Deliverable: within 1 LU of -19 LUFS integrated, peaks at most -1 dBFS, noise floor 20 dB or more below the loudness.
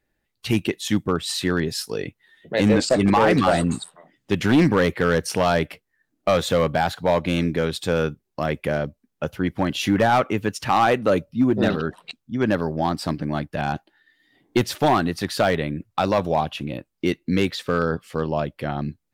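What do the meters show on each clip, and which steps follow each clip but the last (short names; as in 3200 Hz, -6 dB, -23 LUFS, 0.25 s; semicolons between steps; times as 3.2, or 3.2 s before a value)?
clipped 0.8%; flat tops at -11.0 dBFS; loudness -22.5 LUFS; peak -11.0 dBFS; loudness target -19.0 LUFS
-> clip repair -11 dBFS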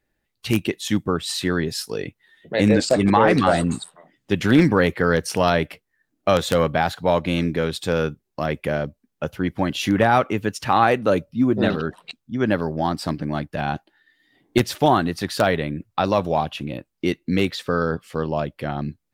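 clipped 0.0%; loudness -21.5 LUFS; peak -2.0 dBFS; loudness target -19.0 LUFS
-> gain +2.5 dB; limiter -1 dBFS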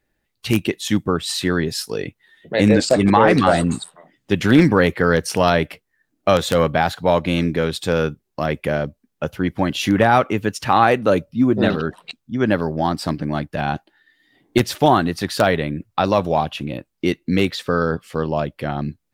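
loudness -19.0 LUFS; peak -1.0 dBFS; noise floor -74 dBFS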